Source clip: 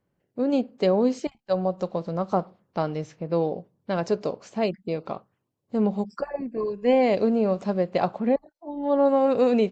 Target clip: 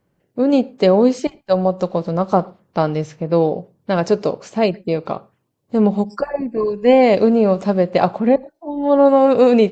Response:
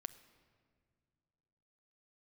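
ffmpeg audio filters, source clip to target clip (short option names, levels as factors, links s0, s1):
-filter_complex "[0:a]asplit=2[s0][s1];[1:a]atrim=start_sample=2205,atrim=end_sample=6174[s2];[s1][s2]afir=irnorm=-1:irlink=0,volume=0.794[s3];[s0][s3]amix=inputs=2:normalize=0,volume=1.78"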